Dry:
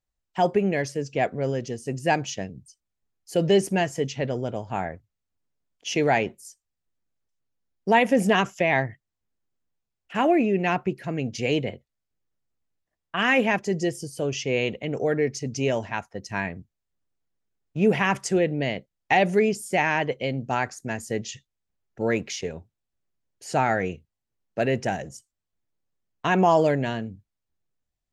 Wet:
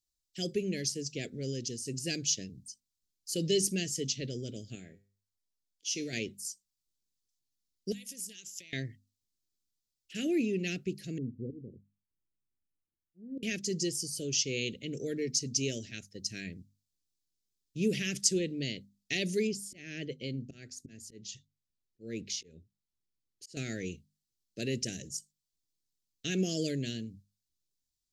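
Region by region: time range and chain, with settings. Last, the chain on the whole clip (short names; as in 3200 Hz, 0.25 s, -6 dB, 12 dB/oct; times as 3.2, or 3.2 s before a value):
4.75–6.13 bell 80 Hz -7.5 dB 0.32 oct + resonator 100 Hz, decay 0.37 s
7.92–8.73 pre-emphasis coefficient 0.9 + compressor 12:1, threshold -38 dBFS
11.18–13.43 inverse Chebyshev low-pass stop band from 2700 Hz, stop band 80 dB + auto swell 0.295 s
19.47–23.57 high shelf 3400 Hz -11.5 dB + auto swell 0.271 s
whole clip: Chebyshev band-stop 360–2400 Hz, order 2; resonant high shelf 3200 Hz +11.5 dB, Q 1.5; notches 50/100/150/200/250 Hz; gain -7 dB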